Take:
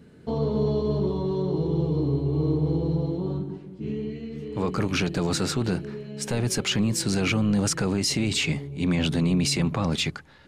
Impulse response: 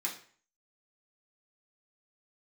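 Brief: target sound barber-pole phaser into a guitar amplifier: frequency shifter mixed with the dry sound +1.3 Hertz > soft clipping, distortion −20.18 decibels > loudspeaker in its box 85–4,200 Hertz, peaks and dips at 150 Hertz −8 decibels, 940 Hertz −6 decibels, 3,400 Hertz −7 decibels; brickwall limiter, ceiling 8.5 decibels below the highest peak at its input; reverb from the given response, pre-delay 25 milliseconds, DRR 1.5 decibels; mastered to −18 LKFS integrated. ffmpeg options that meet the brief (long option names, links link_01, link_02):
-filter_complex "[0:a]alimiter=limit=-22dB:level=0:latency=1,asplit=2[link_01][link_02];[1:a]atrim=start_sample=2205,adelay=25[link_03];[link_02][link_03]afir=irnorm=-1:irlink=0,volume=-4.5dB[link_04];[link_01][link_04]amix=inputs=2:normalize=0,asplit=2[link_05][link_06];[link_06]afreqshift=1.3[link_07];[link_05][link_07]amix=inputs=2:normalize=1,asoftclip=threshold=-23.5dB,highpass=85,equalizer=frequency=150:width_type=q:width=4:gain=-8,equalizer=frequency=940:width_type=q:width=4:gain=-6,equalizer=frequency=3400:width_type=q:width=4:gain=-7,lowpass=frequency=4200:width=0.5412,lowpass=frequency=4200:width=1.3066,volume=17.5dB"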